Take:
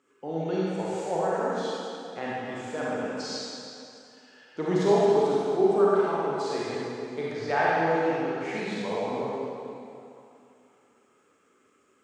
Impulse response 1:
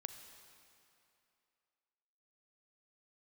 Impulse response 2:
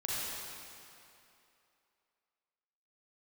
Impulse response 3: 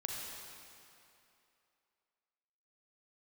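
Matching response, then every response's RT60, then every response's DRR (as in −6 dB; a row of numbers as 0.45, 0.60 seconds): 2; 2.7, 2.8, 2.8 seconds; 7.5, −7.5, −1.5 decibels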